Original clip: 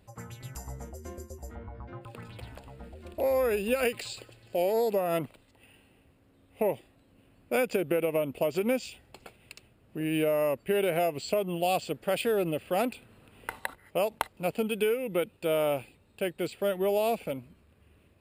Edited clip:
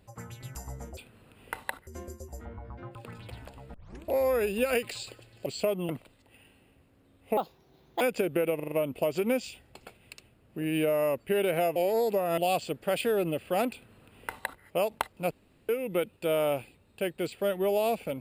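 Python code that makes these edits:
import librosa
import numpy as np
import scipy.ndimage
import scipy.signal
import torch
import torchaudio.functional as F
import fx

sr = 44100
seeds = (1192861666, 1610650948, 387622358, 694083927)

y = fx.edit(x, sr, fx.tape_start(start_s=2.84, length_s=0.31),
    fx.swap(start_s=4.56, length_s=0.62, other_s=11.15, other_length_s=0.43),
    fx.speed_span(start_s=6.66, length_s=0.9, speed=1.41),
    fx.stutter(start_s=8.11, slice_s=0.04, count=5),
    fx.duplicate(start_s=12.93, length_s=0.9, to_s=0.97),
    fx.room_tone_fill(start_s=14.51, length_s=0.38), tone=tone)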